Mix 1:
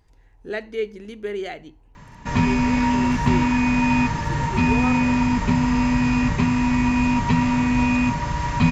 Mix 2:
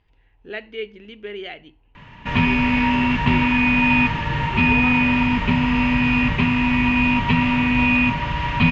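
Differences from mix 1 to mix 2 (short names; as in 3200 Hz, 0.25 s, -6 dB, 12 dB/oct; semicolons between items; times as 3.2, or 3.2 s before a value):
speech -5.0 dB; master: add synth low-pass 2900 Hz, resonance Q 3.5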